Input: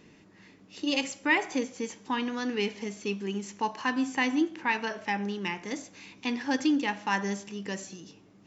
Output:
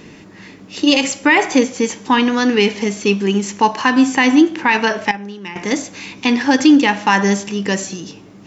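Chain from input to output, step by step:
0:05.11–0:05.56: noise gate −26 dBFS, range −14 dB
boost into a limiter +17.5 dB
level −1 dB

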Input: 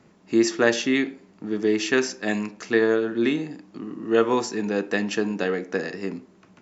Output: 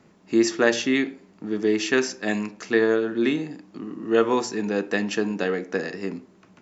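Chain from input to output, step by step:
mains-hum notches 60/120 Hz

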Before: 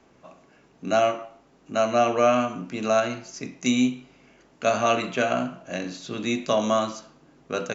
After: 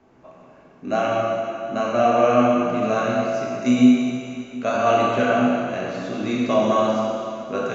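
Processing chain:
high-shelf EQ 2,900 Hz −12 dB
dense smooth reverb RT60 2.7 s, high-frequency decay 0.95×, DRR −4.5 dB

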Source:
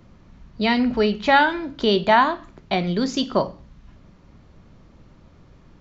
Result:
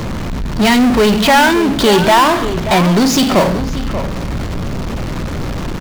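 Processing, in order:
power curve on the samples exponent 0.35
slap from a distant wall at 100 metres, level −10 dB

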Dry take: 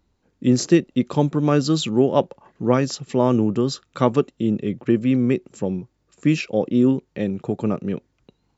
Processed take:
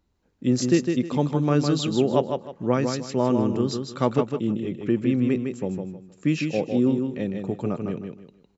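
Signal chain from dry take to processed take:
repeating echo 156 ms, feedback 27%, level −5.5 dB
level −4.5 dB

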